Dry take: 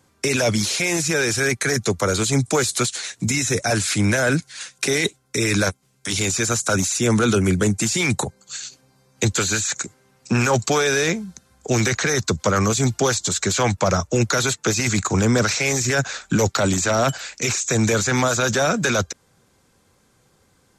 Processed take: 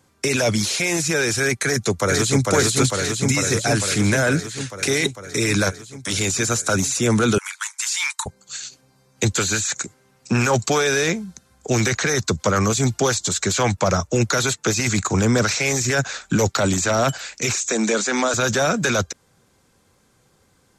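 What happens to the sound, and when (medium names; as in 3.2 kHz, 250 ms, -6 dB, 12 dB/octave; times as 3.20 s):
1.63–2.46 s: echo throw 450 ms, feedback 75%, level -2 dB
7.38–8.26 s: Chebyshev high-pass 880 Hz, order 8
17.70–18.34 s: Chebyshev band-pass 210–8600 Hz, order 4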